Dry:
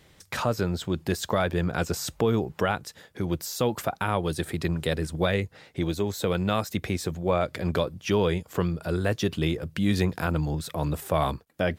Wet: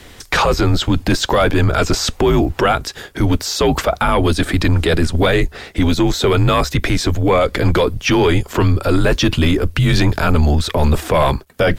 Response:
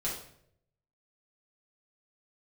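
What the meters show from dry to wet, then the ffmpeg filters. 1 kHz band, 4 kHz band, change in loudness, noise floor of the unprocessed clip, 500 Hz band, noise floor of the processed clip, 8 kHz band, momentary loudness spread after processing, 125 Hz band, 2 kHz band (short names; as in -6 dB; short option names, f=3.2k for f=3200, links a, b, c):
+12.0 dB, +14.0 dB, +11.5 dB, -58 dBFS, +10.5 dB, -42 dBFS, +11.0 dB, 3 LU, +12.0 dB, +12.5 dB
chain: -filter_complex "[0:a]apsyclip=25.5dB,acrossover=split=6300[a][b];[b]acompressor=threshold=-29dB:ratio=4:attack=1:release=60[c];[a][c]amix=inputs=2:normalize=0,afreqshift=-72,volume=-8dB"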